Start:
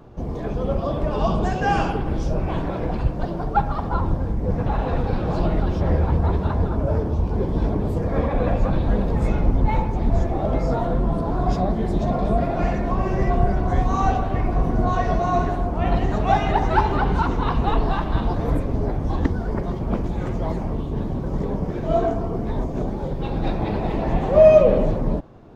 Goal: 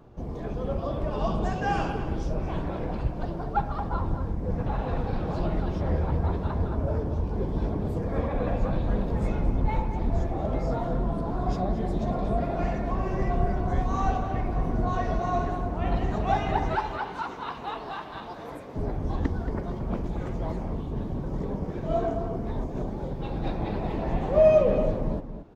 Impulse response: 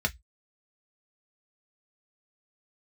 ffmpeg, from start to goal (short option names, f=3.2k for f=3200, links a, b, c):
-filter_complex "[0:a]asettb=1/sr,asplit=3[a][b][c];[a]atrim=end=16.754[d];[b]atrim=start=16.75:end=18.76,asetpts=PTS-STARTPTS,afade=t=in:d=0.004:c=qsin,afade=t=out:st=2.006:d=0.004:c=qsin,highpass=f=900:p=1[e];[c]atrim=start=18.756[f];[d][e]acrossfade=d=0.004:c1=hsin:c2=qsin[g];[g][f]acrossfade=d=0.004:c1=qsin:c2=hsin,asplit=2[h][i];[i]adelay=227.4,volume=-10dB,highshelf=f=4k:g=-5.12[j];[h][j]amix=inputs=2:normalize=0,volume=-6.5dB"